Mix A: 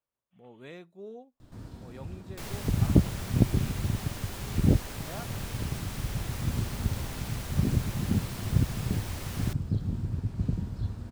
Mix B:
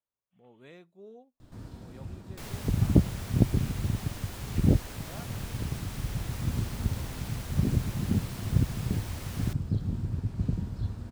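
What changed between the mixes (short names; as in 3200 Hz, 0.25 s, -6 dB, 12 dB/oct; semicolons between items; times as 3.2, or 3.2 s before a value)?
speech -5.5 dB; reverb: off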